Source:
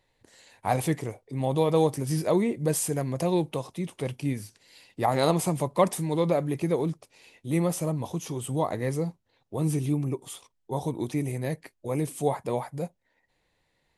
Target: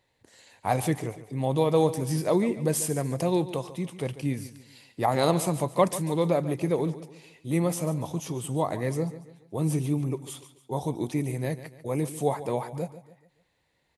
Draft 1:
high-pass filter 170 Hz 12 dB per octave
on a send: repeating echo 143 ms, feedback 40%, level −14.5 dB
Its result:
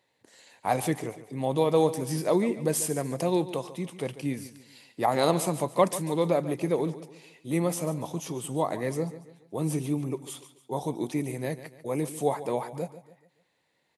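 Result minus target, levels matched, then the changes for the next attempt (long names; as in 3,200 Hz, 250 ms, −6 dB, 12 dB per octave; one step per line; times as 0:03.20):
125 Hz band −3.5 dB
change: high-pass filter 47 Hz 12 dB per octave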